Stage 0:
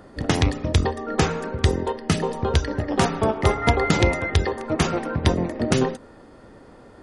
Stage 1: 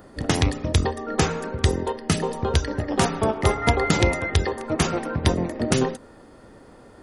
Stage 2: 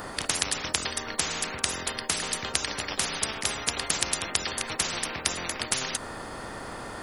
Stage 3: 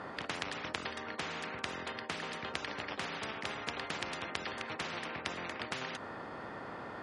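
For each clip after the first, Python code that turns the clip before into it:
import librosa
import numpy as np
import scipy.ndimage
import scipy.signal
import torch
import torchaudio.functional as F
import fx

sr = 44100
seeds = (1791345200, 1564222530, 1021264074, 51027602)

y1 = fx.high_shelf(x, sr, hz=9500.0, db=11.5)
y1 = F.gain(torch.from_numpy(y1), -1.0).numpy()
y2 = fx.spectral_comp(y1, sr, ratio=10.0)
y3 = fx.bandpass_edges(y2, sr, low_hz=110.0, high_hz=2700.0)
y3 = F.gain(torch.from_numpy(y3), -5.5).numpy()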